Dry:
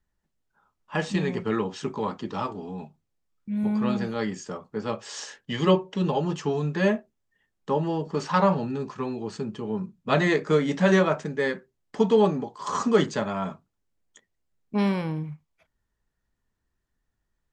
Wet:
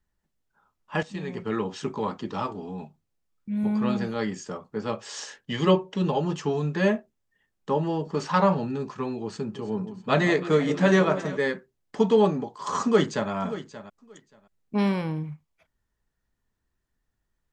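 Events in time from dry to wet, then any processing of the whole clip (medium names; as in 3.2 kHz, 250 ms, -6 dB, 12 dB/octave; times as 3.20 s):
1.03–1.72 s: fade in, from -14 dB
9.29–11.37 s: echo whose repeats swap between lows and highs 162 ms, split 1.1 kHz, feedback 71%, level -11.5 dB
12.82–13.31 s: echo throw 580 ms, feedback 15%, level -14 dB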